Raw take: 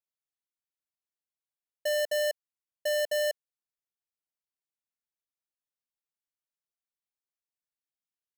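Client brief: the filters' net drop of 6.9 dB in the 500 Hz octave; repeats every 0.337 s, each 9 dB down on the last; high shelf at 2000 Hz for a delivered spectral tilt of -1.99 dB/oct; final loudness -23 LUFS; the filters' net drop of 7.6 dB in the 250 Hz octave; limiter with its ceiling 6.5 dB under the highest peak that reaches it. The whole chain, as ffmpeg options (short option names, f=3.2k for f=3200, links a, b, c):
-af "equalizer=f=250:t=o:g=-7.5,equalizer=f=500:t=o:g=-8,highshelf=f=2k:g=3.5,alimiter=level_in=2.5dB:limit=-24dB:level=0:latency=1,volume=-2.5dB,aecho=1:1:337|674|1011|1348:0.355|0.124|0.0435|0.0152,volume=16dB"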